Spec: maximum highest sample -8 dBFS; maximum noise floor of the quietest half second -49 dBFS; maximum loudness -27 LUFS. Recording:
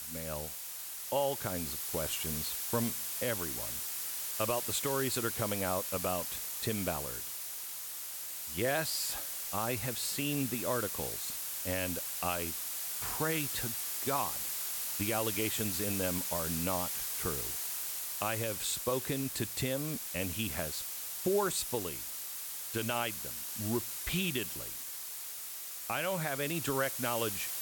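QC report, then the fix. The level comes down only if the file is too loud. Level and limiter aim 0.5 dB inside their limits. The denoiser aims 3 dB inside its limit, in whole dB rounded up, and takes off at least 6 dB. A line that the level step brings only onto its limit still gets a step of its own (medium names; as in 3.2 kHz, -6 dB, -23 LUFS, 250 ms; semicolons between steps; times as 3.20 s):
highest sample -18.0 dBFS: pass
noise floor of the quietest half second -43 dBFS: fail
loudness -33.5 LUFS: pass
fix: noise reduction 9 dB, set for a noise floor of -43 dBFS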